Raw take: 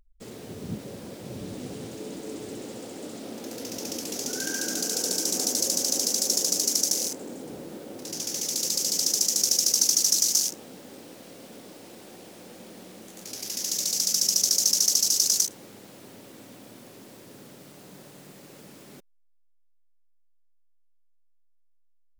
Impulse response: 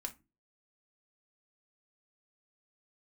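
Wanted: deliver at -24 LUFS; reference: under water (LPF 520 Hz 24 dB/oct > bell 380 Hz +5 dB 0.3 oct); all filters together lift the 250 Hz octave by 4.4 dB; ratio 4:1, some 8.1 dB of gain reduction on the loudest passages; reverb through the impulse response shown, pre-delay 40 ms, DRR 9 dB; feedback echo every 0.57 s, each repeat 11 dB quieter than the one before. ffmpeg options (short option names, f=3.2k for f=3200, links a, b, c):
-filter_complex "[0:a]equalizer=f=250:t=o:g=4.5,acompressor=threshold=-28dB:ratio=4,aecho=1:1:570|1140|1710:0.282|0.0789|0.0221,asplit=2[a][b];[1:a]atrim=start_sample=2205,adelay=40[c];[b][c]afir=irnorm=-1:irlink=0,volume=-7dB[d];[a][d]amix=inputs=2:normalize=0,lowpass=f=520:w=0.5412,lowpass=f=520:w=1.3066,equalizer=f=380:t=o:w=0.3:g=5,volume=15dB"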